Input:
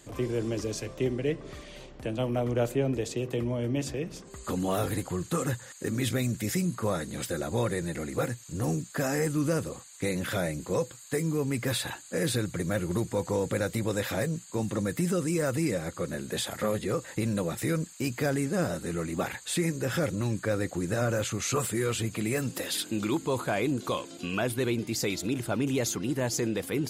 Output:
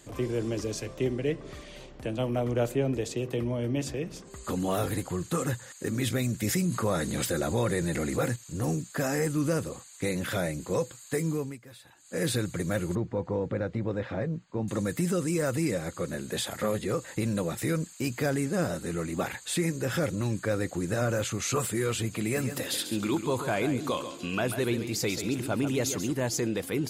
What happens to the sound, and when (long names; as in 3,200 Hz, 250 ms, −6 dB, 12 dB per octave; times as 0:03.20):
0:03.31–0:03.81: notch filter 7,200 Hz, Q 6.5
0:06.42–0:08.36: envelope flattener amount 50%
0:11.31–0:12.23: duck −20.5 dB, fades 0.28 s
0:12.95–0:14.68: head-to-tape spacing loss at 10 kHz 37 dB
0:22.22–0:26.12: repeating echo 138 ms, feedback 17%, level −9.5 dB